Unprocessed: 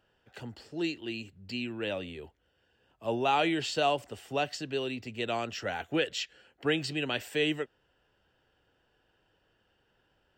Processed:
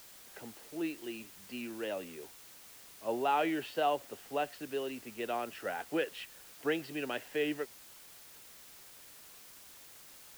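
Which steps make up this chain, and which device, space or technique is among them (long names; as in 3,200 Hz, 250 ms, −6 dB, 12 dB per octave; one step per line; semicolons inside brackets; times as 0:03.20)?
wax cylinder (band-pass filter 250–2,100 Hz; tape wow and flutter; white noise bed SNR 16 dB)
level −2.5 dB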